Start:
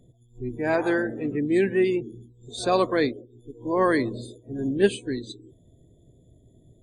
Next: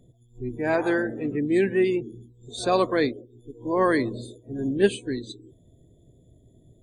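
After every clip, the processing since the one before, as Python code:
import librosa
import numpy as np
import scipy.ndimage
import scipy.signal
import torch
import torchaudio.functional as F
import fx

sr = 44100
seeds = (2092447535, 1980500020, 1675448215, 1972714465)

y = fx.notch(x, sr, hz=4900.0, q=25.0)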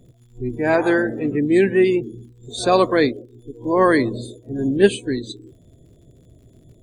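y = fx.dmg_crackle(x, sr, seeds[0], per_s=77.0, level_db=-55.0)
y = y * librosa.db_to_amplitude(6.0)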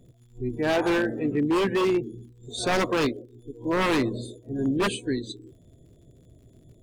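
y = 10.0 ** (-13.5 / 20.0) * (np.abs((x / 10.0 ** (-13.5 / 20.0) + 3.0) % 4.0 - 2.0) - 1.0)
y = y * librosa.db_to_amplitude(-4.0)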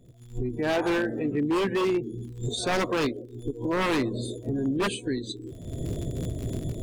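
y = fx.recorder_agc(x, sr, target_db=-20.5, rise_db_per_s=41.0, max_gain_db=30)
y = y * librosa.db_to_amplitude(-2.0)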